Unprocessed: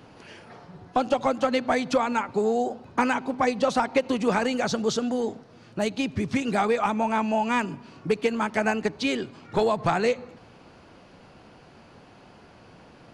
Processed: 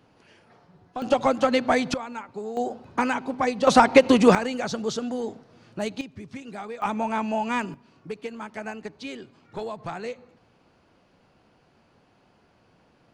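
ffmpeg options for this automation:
ffmpeg -i in.wav -af "asetnsamples=nb_out_samples=441:pad=0,asendcmd='1.02 volume volume 2.5dB;1.94 volume volume -10dB;2.57 volume volume -1dB;3.67 volume volume 8.5dB;4.35 volume volume -3dB;6.01 volume volume -13dB;6.82 volume volume -2dB;7.74 volume volume -10.5dB',volume=-10dB" out.wav

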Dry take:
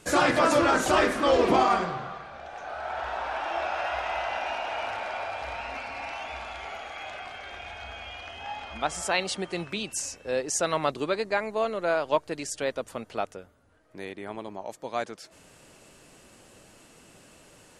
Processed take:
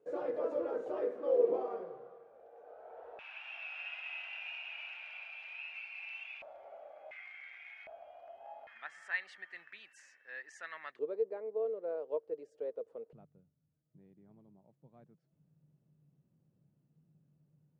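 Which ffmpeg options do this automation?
ffmpeg -i in.wav -af "asetnsamples=nb_out_samples=441:pad=0,asendcmd='3.19 bandpass f 2600;6.42 bandpass f 580;7.11 bandpass f 2100;7.87 bandpass f 640;8.67 bandpass f 1800;10.99 bandpass f 460;13.13 bandpass f 150',bandpass=frequency=470:width_type=q:width=10:csg=0" out.wav

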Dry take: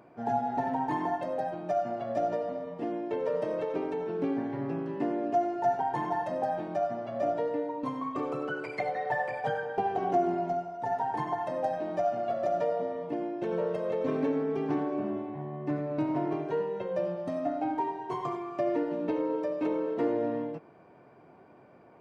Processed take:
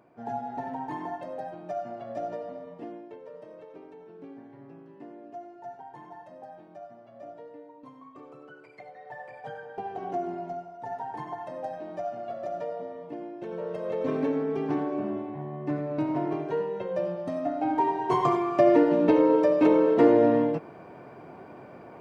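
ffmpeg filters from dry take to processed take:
ffmpeg -i in.wav -af "volume=20.5dB,afade=type=out:start_time=2.73:duration=0.47:silence=0.298538,afade=type=in:start_time=8.96:duration=1.15:silence=0.316228,afade=type=in:start_time=13.58:duration=0.48:silence=0.473151,afade=type=in:start_time=17.56:duration=0.6:silence=0.375837" out.wav

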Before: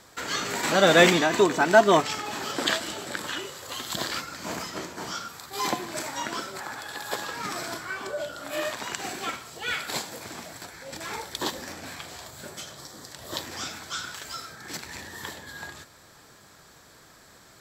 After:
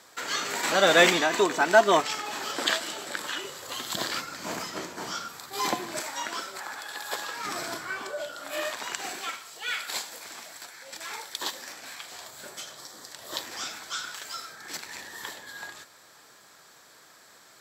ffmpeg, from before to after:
ffmpeg -i in.wav -af "asetnsamples=nb_out_samples=441:pad=0,asendcmd='3.44 highpass f 170;6 highpass f 660;7.47 highpass f 170;8.03 highpass f 540;9.21 highpass f 1200;12.12 highpass f 550',highpass=frequency=460:poles=1" out.wav

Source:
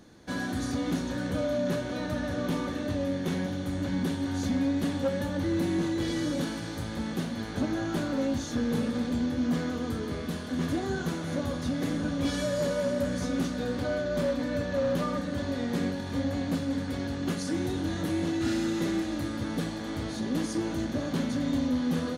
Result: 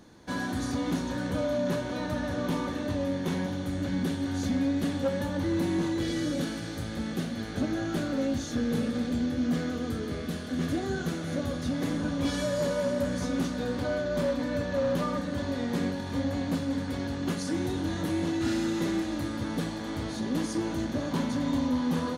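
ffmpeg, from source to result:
ffmpeg -i in.wav -af "asetnsamples=nb_out_samples=441:pad=0,asendcmd='3.66 equalizer g -3;5.06 equalizer g 3.5;5.99 equalizer g -7.5;11.71 equalizer g 3.5;21.11 equalizer g 10.5',equalizer=frequency=960:width_type=o:width=0.28:gain=5.5" out.wav

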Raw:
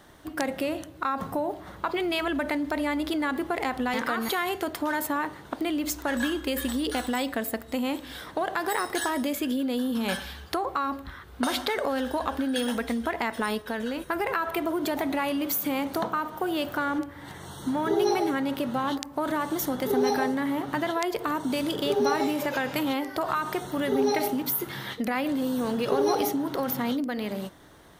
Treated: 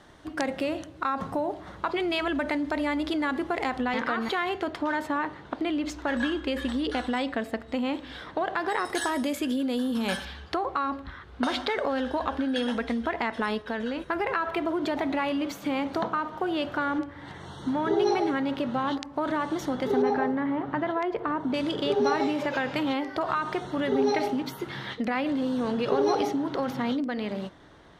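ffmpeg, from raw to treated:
ffmpeg -i in.wav -af "asetnsamples=nb_out_samples=441:pad=0,asendcmd='3.81 lowpass f 4000;8.85 lowpass f 9600;10.25 lowpass f 4500;20.02 lowpass f 1900;21.54 lowpass f 4600',lowpass=6800" out.wav

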